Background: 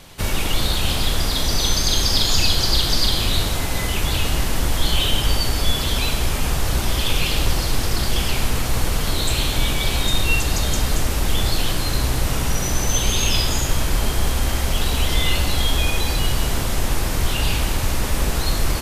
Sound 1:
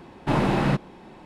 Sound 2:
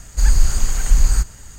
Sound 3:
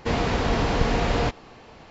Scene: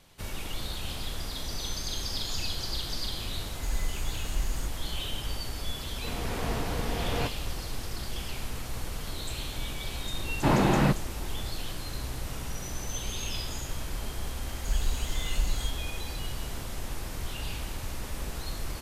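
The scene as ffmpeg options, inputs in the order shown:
ffmpeg -i bed.wav -i cue0.wav -i cue1.wav -i cue2.wav -filter_complex "[2:a]asplit=2[link_01][link_02];[0:a]volume=-15dB[link_03];[3:a]dynaudnorm=framelen=140:gausssize=5:maxgain=11.5dB[link_04];[link_01]atrim=end=1.58,asetpts=PTS-STARTPTS,volume=-17.5dB,afade=type=in:duration=0.004:curve=hsin,afade=type=out:start_time=1.576:duration=0.004:curve=hsin,adelay=152145S[link_05];[link_04]atrim=end=1.9,asetpts=PTS-STARTPTS,volume=-15dB,afade=type=in:duration=0.004:curve=hsin,afade=type=out:start_time=1.896:duration=0.004:curve=hsin,adelay=5980[link_06];[1:a]atrim=end=1.25,asetpts=PTS-STARTPTS,volume=-1dB,afade=type=in:duration=0.004:curve=hsin,afade=type=out:start_time=1.246:duration=0.004:curve=hsin,adelay=10160[link_07];[link_02]atrim=end=1.58,asetpts=PTS-STARTPTS,volume=-15.5dB,afade=type=in:duration=0.004:curve=hsin,afade=type=out:start_time=1.576:duration=0.004:curve=hsin,adelay=14470[link_08];[link_03][link_05][link_06][link_07][link_08]amix=inputs=5:normalize=0" out.wav

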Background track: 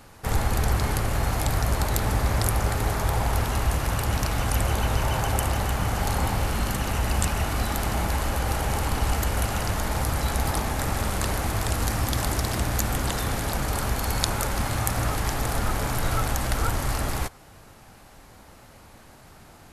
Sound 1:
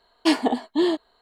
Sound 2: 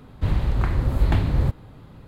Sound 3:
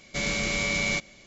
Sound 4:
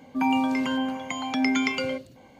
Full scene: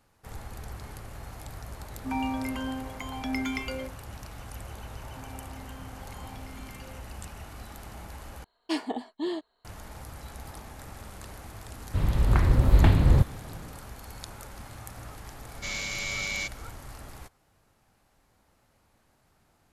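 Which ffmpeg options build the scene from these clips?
ffmpeg -i bed.wav -i cue0.wav -i cue1.wav -i cue2.wav -i cue3.wav -filter_complex "[4:a]asplit=2[link_01][link_02];[0:a]volume=-17.5dB[link_03];[link_01]adynamicsmooth=sensitivity=7:basefreq=4800[link_04];[link_02]acompressor=threshold=-34dB:ratio=6:attack=3.2:release=140:knee=1:detection=peak[link_05];[2:a]dynaudnorm=framelen=310:gausssize=3:maxgain=11.5dB[link_06];[3:a]tiltshelf=frequency=970:gain=-6[link_07];[link_03]asplit=2[link_08][link_09];[link_08]atrim=end=8.444[link_10];[1:a]atrim=end=1.21,asetpts=PTS-STARTPTS,volume=-10.5dB[link_11];[link_09]atrim=start=9.646[link_12];[link_04]atrim=end=2.39,asetpts=PTS-STARTPTS,volume=-7.5dB,afade=type=in:duration=0.004:curve=hsin,afade=type=out:start_time=2.386:duration=0.004:curve=hsin,adelay=1900[link_13];[link_05]atrim=end=2.39,asetpts=PTS-STARTPTS,volume=-13dB,afade=type=in:duration=0.004:curve=hsin,afade=type=out:start_time=2.386:duration=0.004:curve=hsin,adelay=5020[link_14];[link_06]atrim=end=2.07,asetpts=PTS-STARTPTS,volume=-5.5dB,afade=type=in:duration=0.004:curve=hsin,afade=type=out:start_time=2.066:duration=0.004:curve=hsin,adelay=11720[link_15];[link_07]atrim=end=1.26,asetpts=PTS-STARTPTS,volume=-9dB,afade=type=in:duration=0.004:curve=hsin,afade=type=out:start_time=1.256:duration=0.004:curve=hsin,adelay=15480[link_16];[link_10][link_11]acrossfade=duration=0.004:curve1=hsin:curve2=hsin[link_17];[link_17][link_12]acrossfade=duration=0.004:curve1=hsin:curve2=hsin[link_18];[link_18][link_13][link_14][link_15][link_16]amix=inputs=5:normalize=0" out.wav

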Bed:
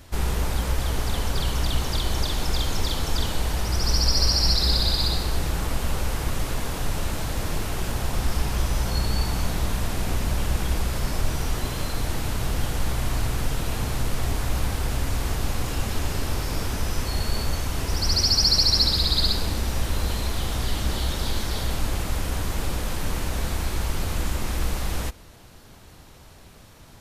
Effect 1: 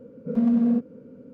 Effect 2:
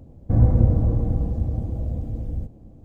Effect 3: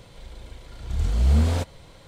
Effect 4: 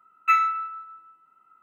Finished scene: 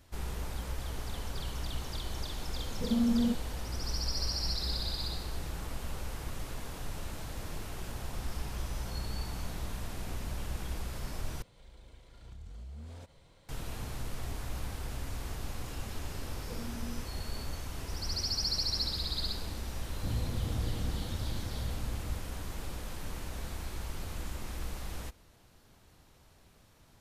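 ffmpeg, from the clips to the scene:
ffmpeg -i bed.wav -i cue0.wav -i cue1.wav -i cue2.wav -filter_complex "[1:a]asplit=2[link_01][link_02];[0:a]volume=-13dB[link_03];[3:a]acompressor=threshold=-31dB:ratio=6:attack=3.2:release=140:knee=1:detection=peak[link_04];[link_02]acompressor=threshold=-30dB:ratio=6:attack=3.2:release=140:knee=1:detection=peak[link_05];[2:a]acompressor=threshold=-18dB:ratio=6:attack=3.2:release=140:knee=1:detection=peak[link_06];[link_03]asplit=2[link_07][link_08];[link_07]atrim=end=11.424[link_09];[link_04]atrim=end=2.07,asetpts=PTS-STARTPTS,volume=-13dB[link_10];[link_08]atrim=start=13.486[link_11];[link_01]atrim=end=1.33,asetpts=PTS-STARTPTS,volume=-7.5dB,afade=type=in:duration=0.004:curve=hsin,afade=type=out:start_time=1.326:duration=0.004:curve=hsin,adelay=2540[link_12];[link_05]atrim=end=1.33,asetpts=PTS-STARTPTS,volume=-12dB,afade=type=in:duration=0.004:curve=hsin,afade=type=out:start_time=1.326:duration=0.004:curve=hsin,adelay=16220[link_13];[link_06]atrim=end=2.84,asetpts=PTS-STARTPTS,volume=-12dB,afade=type=in:duration=0.004:curve=hsin,afade=type=out:start_time=2.836:duration=0.004:curve=hsin,adelay=19740[link_14];[link_09][link_10]acrossfade=duration=0.004:curve1=hsin:curve2=hsin[link_15];[link_15][link_11]acrossfade=duration=0.004:curve1=hsin:curve2=hsin[link_16];[link_16][link_12][link_13][link_14]amix=inputs=4:normalize=0" out.wav

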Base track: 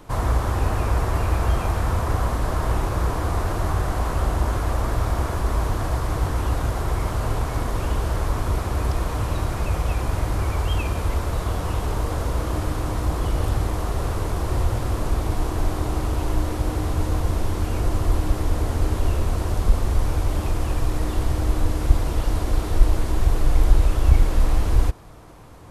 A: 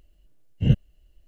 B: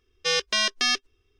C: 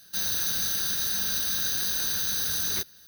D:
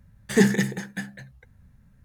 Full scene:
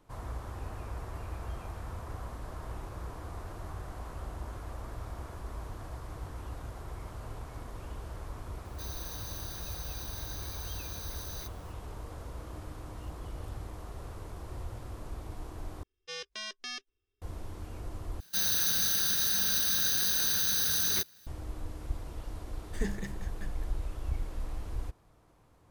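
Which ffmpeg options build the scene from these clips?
ffmpeg -i bed.wav -i cue0.wav -i cue1.wav -i cue2.wav -i cue3.wav -filter_complex "[3:a]asplit=2[link_01][link_02];[0:a]volume=-18.5dB[link_03];[1:a]aderivative[link_04];[link_02]aeval=exprs='sgn(val(0))*max(abs(val(0))-0.00126,0)':channel_layout=same[link_05];[4:a]alimiter=limit=-8.5dB:level=0:latency=1:release=369[link_06];[link_03]asplit=3[link_07][link_08][link_09];[link_07]atrim=end=15.834[link_10];[2:a]atrim=end=1.39,asetpts=PTS-STARTPTS,volume=-17dB[link_11];[link_08]atrim=start=17.216:end=18.204[link_12];[link_05]atrim=end=3.07,asetpts=PTS-STARTPTS,volume=-0.5dB[link_13];[link_09]atrim=start=21.266[link_14];[link_01]atrim=end=3.07,asetpts=PTS-STARTPTS,volume=-16dB,afade=type=in:duration=0.004:curve=hsin,afade=type=out:start_time=3.066:duration=0.004:curve=hsin,adelay=8650[link_15];[link_04]atrim=end=1.27,asetpts=PTS-STARTPTS,volume=-14.5dB,afade=type=in:duration=0.004:curve=hsin,afade=type=out:start_time=1.266:duration=0.004:curve=hsin,adelay=545076S[link_16];[link_06]atrim=end=2.04,asetpts=PTS-STARTPTS,volume=-16dB,afade=type=in:duration=0.004:curve=hsin,afade=type=out:start_time=2.036:duration=0.004:curve=hsin,adelay=989604S[link_17];[link_10][link_11]acrossfade=duration=0.004:curve1=hsin:curve2=hsin[link_18];[link_18][link_12]acrossfade=duration=0.004:curve1=hsin:curve2=hsin[link_19];[link_19][link_13]acrossfade=duration=0.004:curve1=hsin:curve2=hsin[link_20];[link_20][link_14]acrossfade=duration=0.004:curve1=hsin:curve2=hsin[link_21];[link_21][link_15][link_16][link_17]amix=inputs=4:normalize=0" out.wav

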